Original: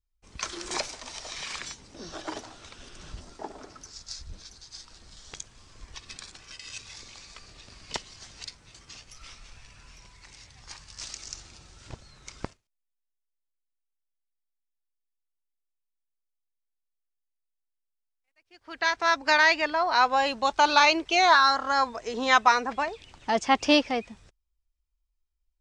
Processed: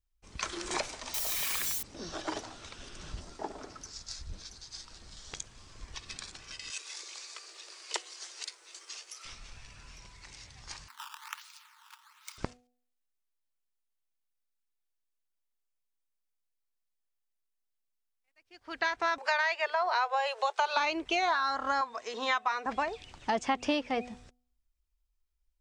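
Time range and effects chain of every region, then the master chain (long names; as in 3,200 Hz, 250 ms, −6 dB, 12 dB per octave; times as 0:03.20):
0:01.14–0:01.83: spike at every zero crossing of −29 dBFS + high-shelf EQ 5,300 Hz +4.5 dB
0:06.70–0:09.25: Chebyshev high-pass with heavy ripple 330 Hz, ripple 3 dB + high-shelf EQ 5,200 Hz +11.5 dB + one half of a high-frequency compander encoder only
0:10.88–0:12.38: sample-and-hold swept by an LFO 12×, swing 160% 1.2 Hz + Chebyshev high-pass with heavy ripple 880 Hz, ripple 3 dB
0:19.18–0:20.77: Butterworth high-pass 380 Hz 96 dB per octave + upward compression, threshold −33 dBFS
0:21.81–0:22.66: high-pass filter 850 Hz 6 dB per octave + high-shelf EQ 5,400 Hz −5.5 dB + hollow resonant body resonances 1,100/3,700 Hz, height 9 dB
whole clip: hum removal 246 Hz, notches 3; dynamic equaliser 5,200 Hz, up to −6 dB, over −42 dBFS, Q 1.4; downward compressor 6 to 1, threshold −26 dBFS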